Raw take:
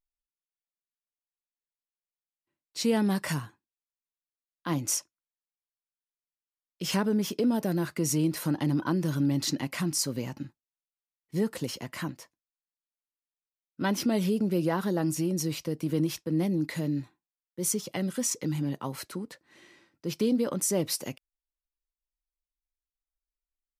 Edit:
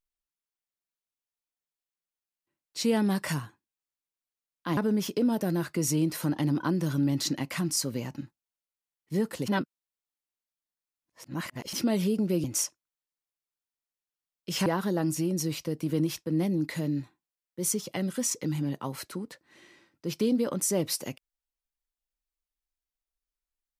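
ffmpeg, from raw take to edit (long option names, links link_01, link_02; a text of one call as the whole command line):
ffmpeg -i in.wav -filter_complex "[0:a]asplit=6[link_01][link_02][link_03][link_04][link_05][link_06];[link_01]atrim=end=4.772[link_07];[link_02]atrim=start=6.988:end=11.702[link_08];[link_03]atrim=start=11.698:end=13.952,asetpts=PTS-STARTPTS,areverse[link_09];[link_04]atrim=start=13.948:end=14.662[link_10];[link_05]atrim=start=4.768:end=6.992[link_11];[link_06]atrim=start=14.658[link_12];[link_07][link_08]acrossfade=duration=0.004:curve1=hsin:curve2=hsin[link_13];[link_13][link_09]acrossfade=duration=0.004:curve1=hsin:curve2=hsin[link_14];[link_14][link_10]acrossfade=duration=0.004:curve1=hsin:curve2=hsin[link_15];[link_15][link_11]acrossfade=duration=0.004:curve1=hsin:curve2=hsin[link_16];[link_16][link_12]acrossfade=duration=0.004:curve1=hsin:curve2=hsin" out.wav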